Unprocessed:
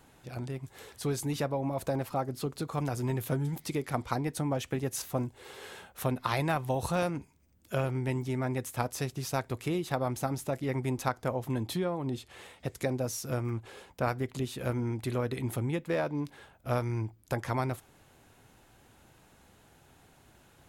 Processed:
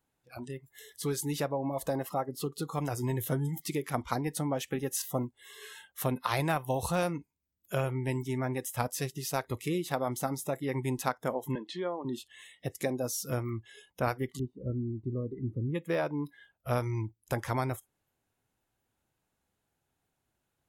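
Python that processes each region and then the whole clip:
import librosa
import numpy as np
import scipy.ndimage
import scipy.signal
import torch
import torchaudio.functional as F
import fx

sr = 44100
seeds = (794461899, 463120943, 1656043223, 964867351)

y = fx.chain(x, sr, fx.highpass(hz=330.0, slope=12),
    fx.air_absorb(metres=130.0), at=(11.55, 12.05))
y = fx.moving_average(y, sr, points=53, at=(14.38, 15.74), fade=0.02)
y = fx.dmg_buzz(y, sr, base_hz=60.0, harmonics=17, level_db=-68.0, tilt_db=-1, odd_only=False, at=(14.38, 15.74), fade=0.02)
y = fx.noise_reduce_blind(y, sr, reduce_db=22)
y = fx.high_shelf(y, sr, hz=9400.0, db=6.5)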